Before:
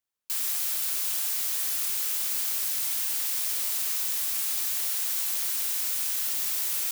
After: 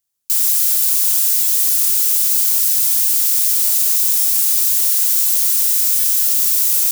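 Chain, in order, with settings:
bass and treble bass +7 dB, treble +12 dB
buffer that repeats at 0:01.42/0:04.19/0:05.99, samples 256, times 8
level +2 dB

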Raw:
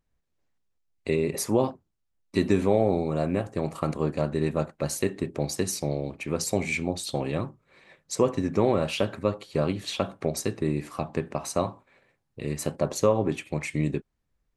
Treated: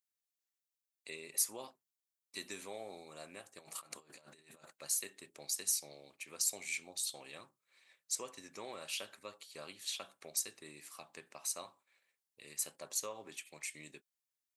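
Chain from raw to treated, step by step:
0:03.59–0:04.73: compressor whose output falls as the input rises −32 dBFS, ratio −0.5
first difference
level −1.5 dB

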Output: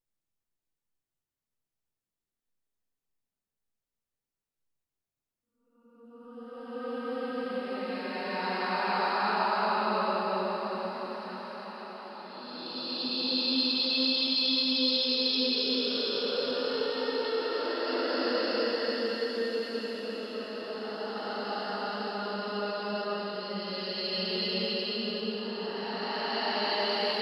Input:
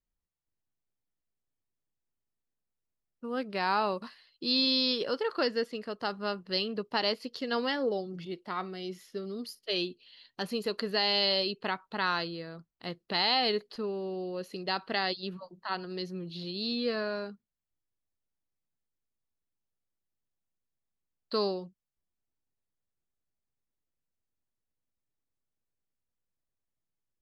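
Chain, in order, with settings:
extreme stretch with random phases 5.3×, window 0.50 s, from 0:01.96
mains-hum notches 60/120/180/240 Hz
feedback delay with all-pass diffusion 1,141 ms, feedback 62%, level −13 dB

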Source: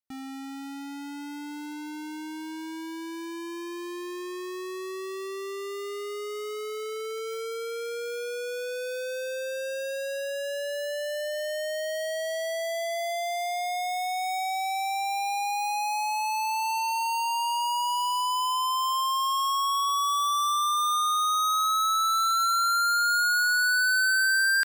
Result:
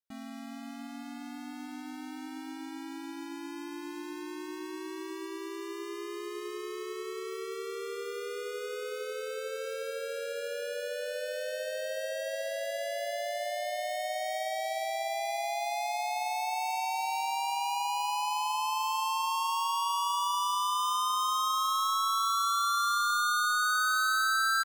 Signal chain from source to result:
pitch-shifted copies added −3 semitones 0 dB
feedback echo with a band-pass in the loop 363 ms, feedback 56%, band-pass 530 Hz, level −13 dB
level −7.5 dB

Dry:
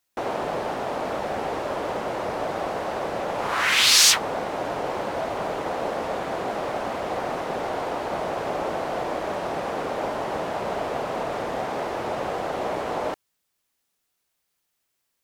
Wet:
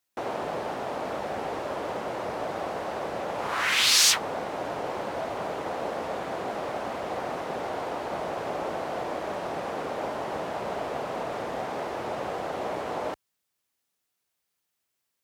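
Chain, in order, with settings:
high-pass filter 53 Hz
level −4 dB

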